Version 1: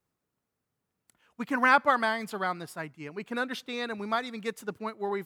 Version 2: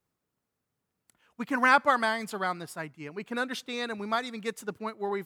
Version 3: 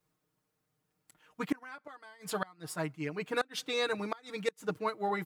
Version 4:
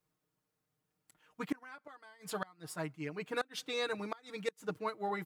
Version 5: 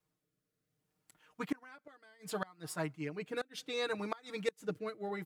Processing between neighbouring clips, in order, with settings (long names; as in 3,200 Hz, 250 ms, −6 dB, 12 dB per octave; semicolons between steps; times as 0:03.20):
dynamic equaliser 7,700 Hz, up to +6 dB, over −50 dBFS, Q 0.98
comb filter 6.5 ms, depth 82%; gate with flip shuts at −18 dBFS, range −28 dB
hard clipping −18.5 dBFS, distortion −44 dB; level −4 dB
rotating-speaker cabinet horn 0.65 Hz; level +2.5 dB